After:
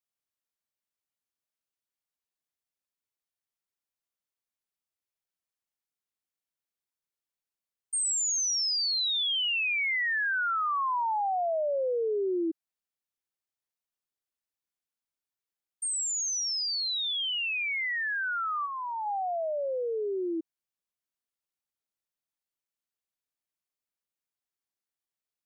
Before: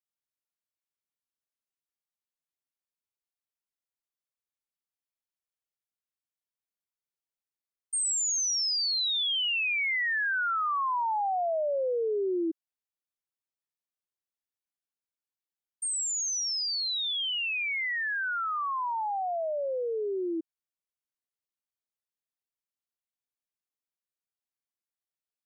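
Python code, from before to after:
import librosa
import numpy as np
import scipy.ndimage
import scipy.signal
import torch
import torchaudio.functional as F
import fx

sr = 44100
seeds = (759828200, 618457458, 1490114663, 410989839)

y = fx.cheby_ripple_highpass(x, sr, hz=180.0, ripple_db=9, at=(18.65, 19.05), fade=0.02)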